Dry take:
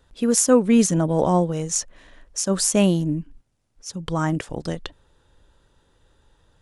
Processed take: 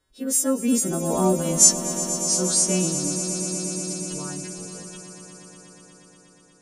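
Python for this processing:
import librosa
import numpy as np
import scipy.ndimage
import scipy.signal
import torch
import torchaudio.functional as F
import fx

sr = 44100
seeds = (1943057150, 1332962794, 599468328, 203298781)

p1 = fx.freq_snap(x, sr, grid_st=2)
p2 = fx.doppler_pass(p1, sr, speed_mps=25, closest_m=6.9, pass_at_s=1.68)
p3 = fx.echo_swell(p2, sr, ms=120, loudest=5, wet_db=-14.0)
p4 = fx.rider(p3, sr, range_db=4, speed_s=2.0)
p5 = p3 + F.gain(torch.from_numpy(p4), -1.5).numpy()
p6 = fx.small_body(p5, sr, hz=(270.0, 380.0, 1400.0), ring_ms=35, db=7)
y = F.gain(torch.from_numpy(p6), -4.5).numpy()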